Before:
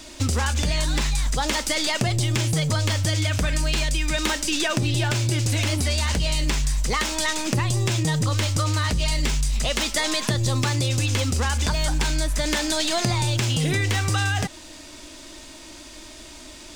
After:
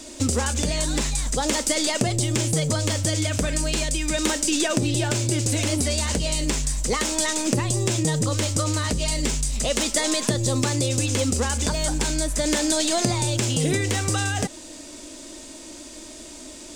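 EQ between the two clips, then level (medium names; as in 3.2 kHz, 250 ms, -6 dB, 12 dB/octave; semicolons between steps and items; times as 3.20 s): graphic EQ 250/500/8000 Hz +7/+8/+10 dB; -4.0 dB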